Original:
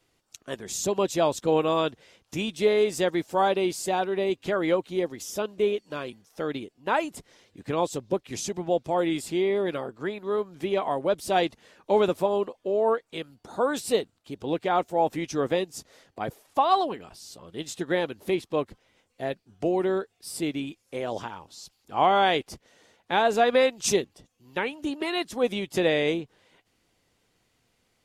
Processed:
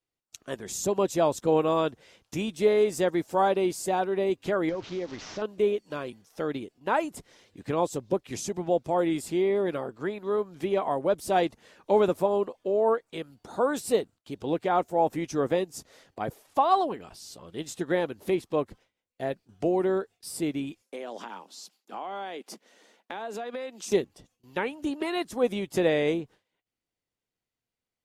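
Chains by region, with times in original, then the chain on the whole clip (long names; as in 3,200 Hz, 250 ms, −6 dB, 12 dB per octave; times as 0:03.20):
0:04.69–0:05.42: linear delta modulator 32 kbit/s, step −37 dBFS + downward compressor 3 to 1, threshold −30 dBFS
0:20.82–0:23.92: Butterworth high-pass 190 Hz 48 dB per octave + downward compressor, threshold −33 dBFS
whole clip: noise gate with hold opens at −49 dBFS; dynamic equaliser 3,400 Hz, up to −6 dB, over −44 dBFS, Q 0.8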